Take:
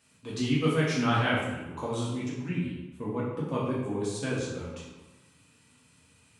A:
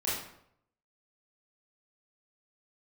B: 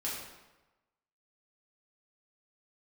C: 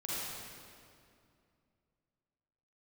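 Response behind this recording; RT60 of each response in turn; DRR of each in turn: B; 0.70, 1.1, 2.4 seconds; −9.0, −7.0, −8.5 decibels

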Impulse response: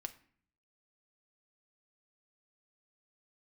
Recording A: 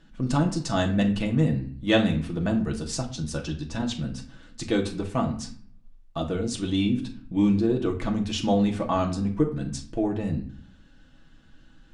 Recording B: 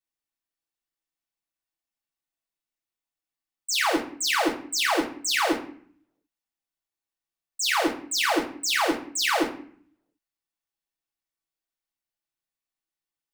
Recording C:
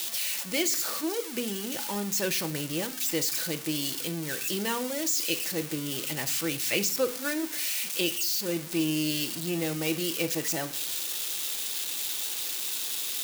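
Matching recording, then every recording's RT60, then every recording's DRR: C; 0.50, 0.50, 0.50 seconds; 0.5, −6.0, 7.0 decibels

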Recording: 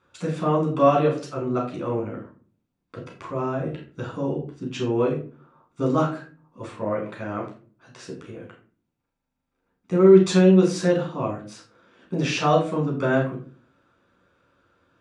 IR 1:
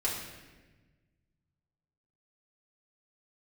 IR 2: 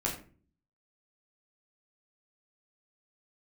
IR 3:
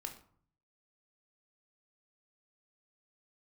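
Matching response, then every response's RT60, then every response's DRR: 2; 1.2, 0.40, 0.55 seconds; −6.5, −3.0, 4.5 decibels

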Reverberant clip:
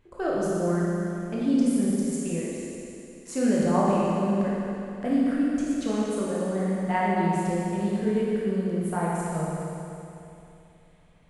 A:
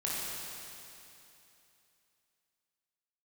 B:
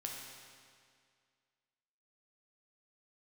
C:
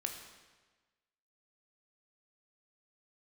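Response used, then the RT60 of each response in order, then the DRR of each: A; 2.9, 2.1, 1.3 seconds; −6.5, −1.0, 3.5 decibels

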